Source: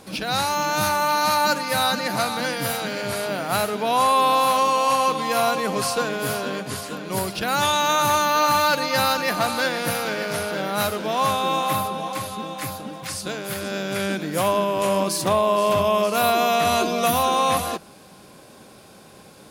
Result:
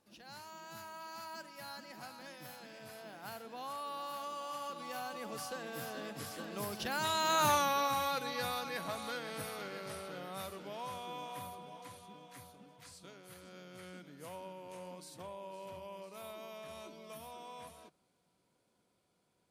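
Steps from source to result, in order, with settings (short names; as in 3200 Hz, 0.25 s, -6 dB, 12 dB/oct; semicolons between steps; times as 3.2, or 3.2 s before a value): Doppler pass-by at 7.49, 26 m/s, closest 3.6 m; compressor 2:1, threshold -47 dBFS, peak gain reduction 16.5 dB; gain +7 dB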